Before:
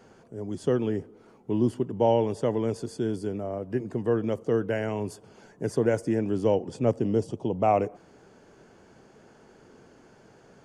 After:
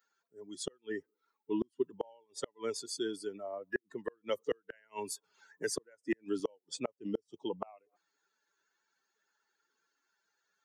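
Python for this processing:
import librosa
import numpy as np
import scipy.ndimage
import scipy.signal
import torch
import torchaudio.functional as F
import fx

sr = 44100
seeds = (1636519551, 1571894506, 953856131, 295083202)

y = fx.bin_expand(x, sr, power=2.0)
y = scipy.signal.sosfilt(scipy.signal.butter(2, 640.0, 'highpass', fs=sr, output='sos'), y)
y = fx.peak_eq(y, sr, hz=1600.0, db=3.5, octaves=1.0)
y = fx.gate_flip(y, sr, shuts_db=-31.0, range_db=-40)
y = fx.band_squash(y, sr, depth_pct=40, at=(4.29, 6.4))
y = y * librosa.db_to_amplitude(10.5)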